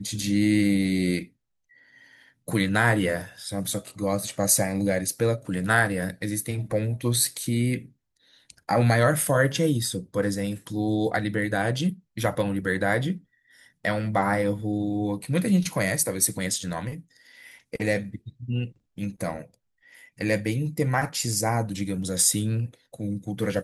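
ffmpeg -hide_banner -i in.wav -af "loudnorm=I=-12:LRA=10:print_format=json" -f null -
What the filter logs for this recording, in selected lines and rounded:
"input_i" : "-25.5",
"input_tp" : "-6.2",
"input_lra" : "4.0",
"input_thresh" : "-36.1",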